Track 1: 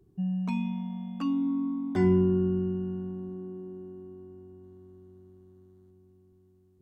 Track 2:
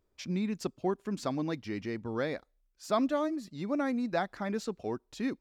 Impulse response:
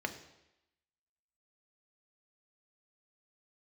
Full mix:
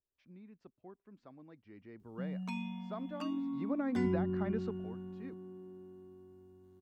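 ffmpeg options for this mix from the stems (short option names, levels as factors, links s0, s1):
-filter_complex "[0:a]tiltshelf=f=970:g=-5,adelay=2000,volume=0.531[s0];[1:a]lowpass=2200,volume=0.708,afade=t=in:st=1.48:d=0.74:silence=0.354813,afade=t=in:st=3.39:d=0.34:silence=0.298538,afade=t=out:st=4.62:d=0.24:silence=0.237137[s1];[s0][s1]amix=inputs=2:normalize=0,acrossover=split=370[s2][s3];[s3]acompressor=threshold=0.0126:ratio=10[s4];[s2][s4]amix=inputs=2:normalize=0"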